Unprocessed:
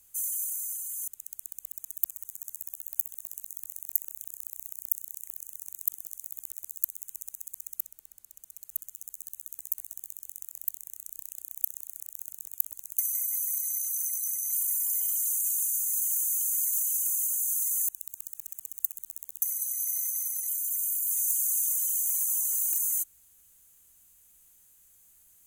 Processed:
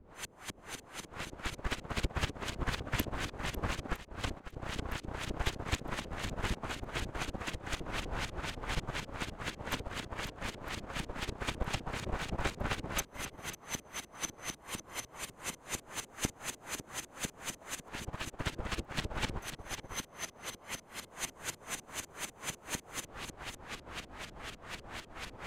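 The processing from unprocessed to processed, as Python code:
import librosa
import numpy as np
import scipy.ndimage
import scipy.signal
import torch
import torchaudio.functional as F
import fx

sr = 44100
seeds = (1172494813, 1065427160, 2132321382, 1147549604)

p1 = x + 0.5 * 10.0 ** (-30.0 / 20.0) * np.sign(x)
p2 = fx.auto_swell(p1, sr, attack_ms=448.0, at=(3.95, 4.51), fade=0.02)
p3 = fx.filter_lfo_lowpass(p2, sr, shape='saw_up', hz=4.0, low_hz=250.0, high_hz=3700.0, q=1.2)
p4 = p3 + fx.echo_single(p3, sr, ms=548, db=-5.0, dry=0)
p5 = fx.upward_expand(p4, sr, threshold_db=-53.0, expansion=2.5)
y = p5 * 10.0 ** (12.5 / 20.0)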